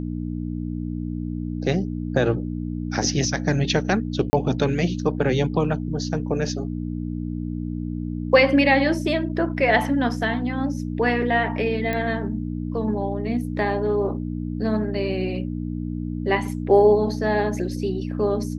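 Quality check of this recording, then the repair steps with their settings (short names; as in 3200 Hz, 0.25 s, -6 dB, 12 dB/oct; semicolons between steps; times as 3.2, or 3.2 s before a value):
hum 60 Hz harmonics 5 -28 dBFS
4.3–4.33 gap 30 ms
11.93 pop -13 dBFS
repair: de-click; de-hum 60 Hz, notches 5; interpolate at 4.3, 30 ms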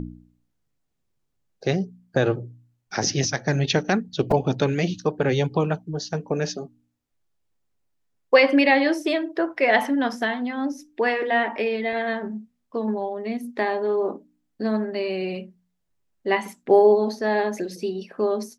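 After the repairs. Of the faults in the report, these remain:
none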